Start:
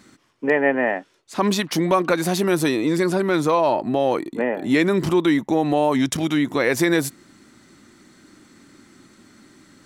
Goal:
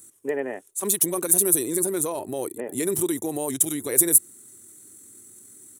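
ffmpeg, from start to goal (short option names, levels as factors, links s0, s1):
-af "aexciter=amount=12.5:drive=9.5:freq=7200,atempo=1.7,equalizer=f=100:t=o:w=0.67:g=11,equalizer=f=400:t=o:w=0.67:g=11,equalizer=f=4000:t=o:w=0.67:g=7,equalizer=f=10000:t=o:w=0.67:g=8,volume=0.188"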